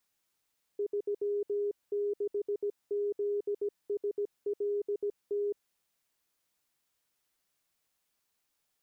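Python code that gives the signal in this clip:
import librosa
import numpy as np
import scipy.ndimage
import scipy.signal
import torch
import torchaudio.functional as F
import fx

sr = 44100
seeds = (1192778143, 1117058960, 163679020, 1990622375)

y = fx.morse(sr, text='36ZSLT', wpm=17, hz=409.0, level_db=-28.5)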